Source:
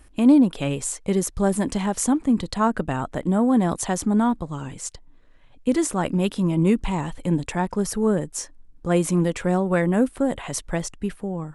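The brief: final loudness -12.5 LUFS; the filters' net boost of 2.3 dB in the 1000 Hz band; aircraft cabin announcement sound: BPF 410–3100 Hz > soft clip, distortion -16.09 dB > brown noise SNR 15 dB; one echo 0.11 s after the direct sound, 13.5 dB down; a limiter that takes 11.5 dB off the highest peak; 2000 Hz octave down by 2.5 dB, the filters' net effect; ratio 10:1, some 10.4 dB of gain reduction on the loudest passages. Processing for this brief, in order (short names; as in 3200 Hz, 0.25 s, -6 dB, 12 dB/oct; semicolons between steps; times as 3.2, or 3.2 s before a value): bell 1000 Hz +4 dB; bell 2000 Hz -4 dB; compressor 10:1, threshold -21 dBFS; limiter -21.5 dBFS; BPF 410–3100 Hz; echo 0.11 s -13.5 dB; soft clip -27.5 dBFS; brown noise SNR 15 dB; gain +26 dB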